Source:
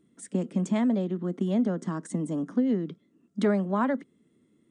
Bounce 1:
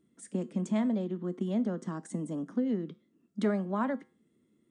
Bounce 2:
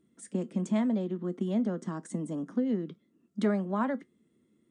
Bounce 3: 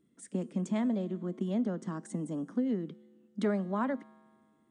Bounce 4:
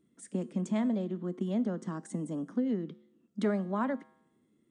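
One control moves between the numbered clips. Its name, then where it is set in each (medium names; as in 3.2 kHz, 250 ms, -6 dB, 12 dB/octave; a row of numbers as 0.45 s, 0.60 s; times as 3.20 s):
feedback comb, decay: 0.38 s, 0.16 s, 2 s, 0.86 s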